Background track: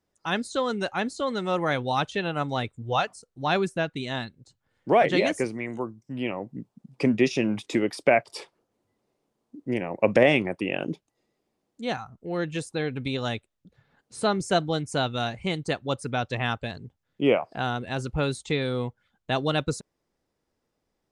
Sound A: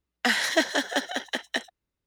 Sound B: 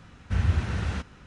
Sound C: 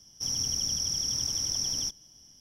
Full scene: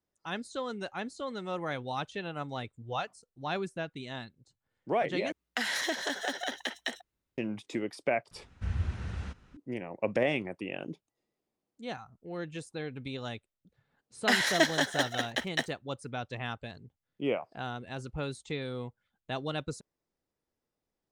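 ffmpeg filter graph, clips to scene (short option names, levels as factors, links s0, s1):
-filter_complex "[1:a]asplit=2[s0][s1];[0:a]volume=0.335[s2];[s0]acompressor=threshold=0.0501:ratio=6:attack=3.2:release=140:knee=1:detection=peak[s3];[2:a]lowshelf=f=66:g=7.5[s4];[s1]aeval=exprs='sgn(val(0))*max(abs(val(0))-0.00224,0)':c=same[s5];[s2]asplit=2[s6][s7];[s6]atrim=end=5.324[s8];[s3]atrim=end=2.06,asetpts=PTS-STARTPTS,volume=0.841[s9];[s7]atrim=start=7.376[s10];[s4]atrim=end=1.26,asetpts=PTS-STARTPTS,volume=0.282,afade=t=in:d=0.004:c=hsin,afade=t=out:st=1.256:d=0.004:c=hsin,adelay=8310[s11];[s5]atrim=end=2.06,asetpts=PTS-STARTPTS,volume=0.794,afade=t=in:d=0.004:c=hsin,afade=t=out:st=2.056:d=0.004:c=hsin,adelay=14030[s12];[s8][s9]acrossfade=d=0.004:c1=hsin:c2=hsin[s13];[s13][s10]acrossfade=d=0.004:c1=hsin:c2=hsin[s14];[s14][s11][s12]amix=inputs=3:normalize=0"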